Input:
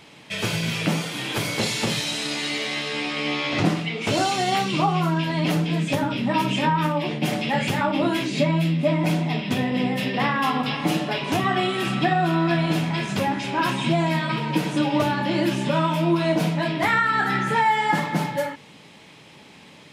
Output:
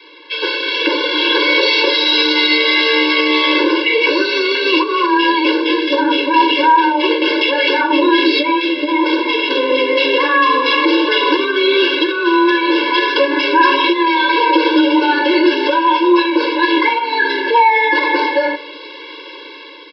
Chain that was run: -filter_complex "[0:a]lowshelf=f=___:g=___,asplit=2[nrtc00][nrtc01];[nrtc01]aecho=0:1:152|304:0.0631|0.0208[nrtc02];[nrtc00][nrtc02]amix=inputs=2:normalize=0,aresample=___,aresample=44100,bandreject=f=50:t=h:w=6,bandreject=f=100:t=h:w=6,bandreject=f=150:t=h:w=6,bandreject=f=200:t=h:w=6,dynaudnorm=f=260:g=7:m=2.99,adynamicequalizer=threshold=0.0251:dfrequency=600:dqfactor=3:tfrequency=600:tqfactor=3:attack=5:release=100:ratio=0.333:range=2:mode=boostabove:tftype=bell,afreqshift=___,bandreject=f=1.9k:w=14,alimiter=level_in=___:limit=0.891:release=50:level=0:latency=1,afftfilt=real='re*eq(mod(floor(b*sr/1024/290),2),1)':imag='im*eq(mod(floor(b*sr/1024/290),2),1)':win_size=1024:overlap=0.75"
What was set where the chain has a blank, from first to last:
290, -7, 11025, 13, 3.76